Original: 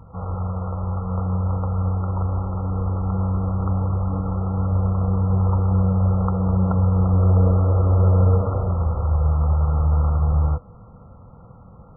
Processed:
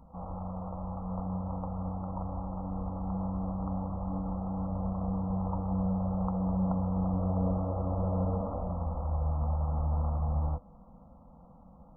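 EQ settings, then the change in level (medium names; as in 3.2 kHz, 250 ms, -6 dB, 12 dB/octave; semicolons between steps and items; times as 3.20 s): static phaser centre 410 Hz, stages 6; -5.0 dB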